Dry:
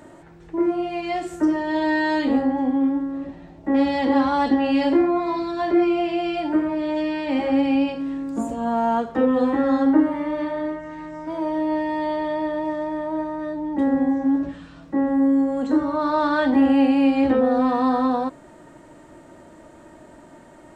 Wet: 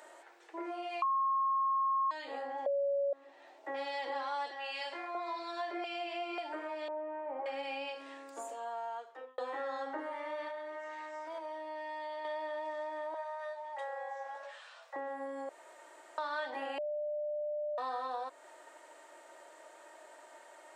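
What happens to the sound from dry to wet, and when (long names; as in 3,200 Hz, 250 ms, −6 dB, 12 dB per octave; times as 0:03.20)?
0:01.02–0:02.11: beep over 1,080 Hz −7 dBFS
0:02.66–0:03.13: beep over 561 Hz −7 dBFS
0:04.51–0:05.15: high-pass filter 1,300 Hz 6 dB per octave
0:05.84–0:06.38: reverse
0:06.88–0:07.46: low-pass filter 1,200 Hz 24 dB per octave
0:08.10–0:09.38: fade out
0:10.48–0:12.25: downward compressor, threshold −28 dBFS
0:13.14–0:14.96: Butterworth high-pass 520 Hz
0:15.49–0:16.18: fill with room tone
0:16.78–0:17.78: beep over 597 Hz −19.5 dBFS
whole clip: Bessel high-pass filter 740 Hz, order 6; parametric band 1,200 Hz −2 dB; downward compressor 2.5 to 1, threshold −37 dBFS; level −2 dB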